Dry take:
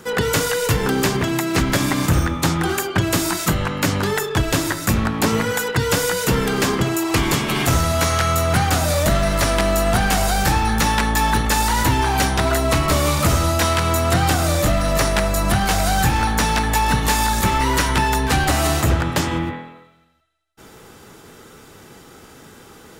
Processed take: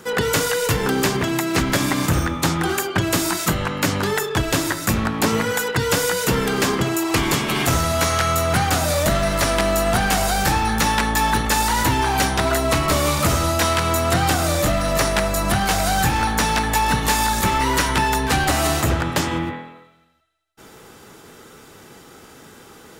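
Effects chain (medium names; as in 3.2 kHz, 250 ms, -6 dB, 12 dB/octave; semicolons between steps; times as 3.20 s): bass shelf 130 Hz -5 dB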